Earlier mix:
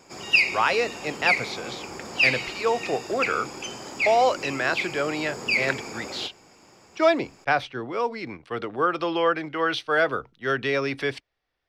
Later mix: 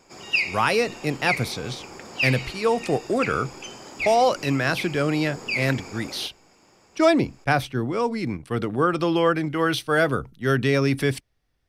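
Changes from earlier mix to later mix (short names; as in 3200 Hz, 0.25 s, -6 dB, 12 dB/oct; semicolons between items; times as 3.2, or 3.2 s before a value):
speech: remove three-band isolator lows -14 dB, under 380 Hz, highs -23 dB, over 5400 Hz; background -3.5 dB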